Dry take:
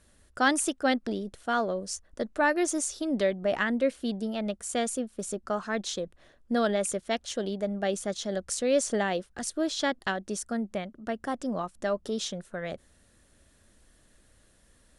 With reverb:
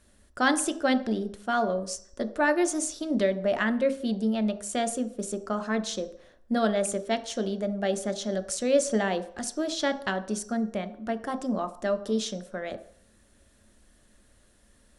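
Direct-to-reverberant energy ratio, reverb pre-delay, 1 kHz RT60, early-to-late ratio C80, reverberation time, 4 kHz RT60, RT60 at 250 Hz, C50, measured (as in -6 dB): 8.5 dB, 3 ms, 0.60 s, 17.0 dB, 0.55 s, 0.55 s, 0.45 s, 14.0 dB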